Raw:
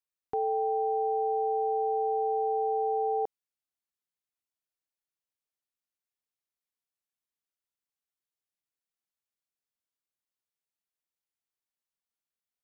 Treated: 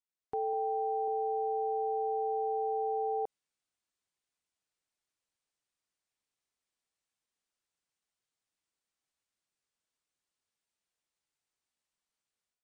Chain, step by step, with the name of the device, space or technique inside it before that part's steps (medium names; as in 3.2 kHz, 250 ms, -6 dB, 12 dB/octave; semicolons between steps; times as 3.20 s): 0.53–1.08 s: tilt EQ +2 dB/octave; low-bitrate web radio (level rider gain up to 10.5 dB; peak limiter -20.5 dBFS, peak gain reduction 8.5 dB; trim -5.5 dB; MP3 48 kbps 22.05 kHz)